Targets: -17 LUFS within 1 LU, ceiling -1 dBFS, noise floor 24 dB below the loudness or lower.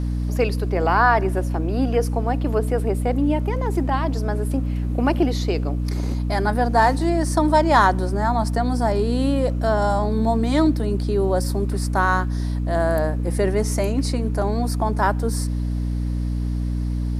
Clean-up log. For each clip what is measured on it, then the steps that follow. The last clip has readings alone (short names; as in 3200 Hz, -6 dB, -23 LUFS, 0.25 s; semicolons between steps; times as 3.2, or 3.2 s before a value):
hum 60 Hz; harmonics up to 300 Hz; hum level -21 dBFS; loudness -21.5 LUFS; peak -3.0 dBFS; loudness target -17.0 LUFS
-> notches 60/120/180/240/300 Hz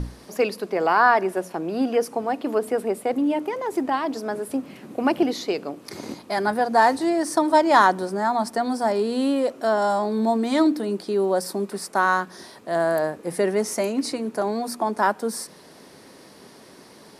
hum none; loudness -23.0 LUFS; peak -3.5 dBFS; loudness target -17.0 LUFS
-> gain +6 dB; limiter -1 dBFS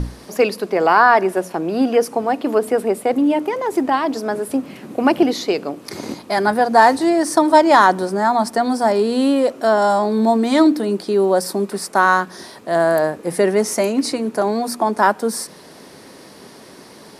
loudness -17.0 LUFS; peak -1.0 dBFS; noise floor -42 dBFS